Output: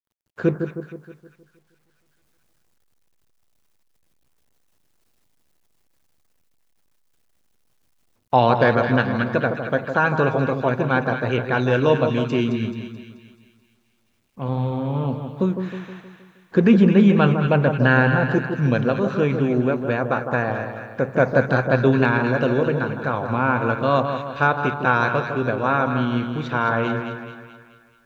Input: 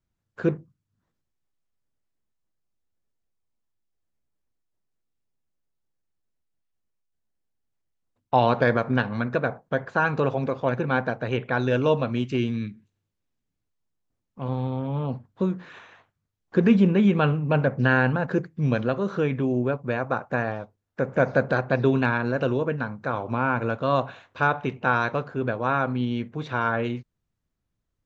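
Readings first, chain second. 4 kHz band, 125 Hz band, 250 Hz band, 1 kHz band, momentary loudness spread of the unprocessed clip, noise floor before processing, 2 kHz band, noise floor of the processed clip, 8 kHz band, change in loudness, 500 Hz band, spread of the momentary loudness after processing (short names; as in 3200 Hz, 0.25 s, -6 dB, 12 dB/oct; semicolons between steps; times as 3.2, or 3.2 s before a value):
+4.5 dB, +4.5 dB, +4.5 dB, +4.5 dB, 9 LU, -81 dBFS, +4.5 dB, -65 dBFS, n/a, +4.5 dB, +4.5 dB, 11 LU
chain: split-band echo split 1300 Hz, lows 0.157 s, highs 0.216 s, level -7 dB; bit-crush 12-bit; gain +3.5 dB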